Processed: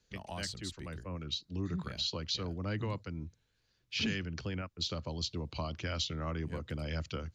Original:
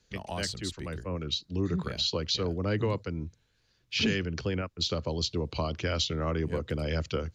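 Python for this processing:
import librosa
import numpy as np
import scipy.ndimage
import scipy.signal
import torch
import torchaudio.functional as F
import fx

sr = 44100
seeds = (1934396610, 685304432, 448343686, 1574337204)

y = fx.dynamic_eq(x, sr, hz=440.0, q=2.1, threshold_db=-45.0, ratio=4.0, max_db=-7)
y = y * 10.0 ** (-5.5 / 20.0)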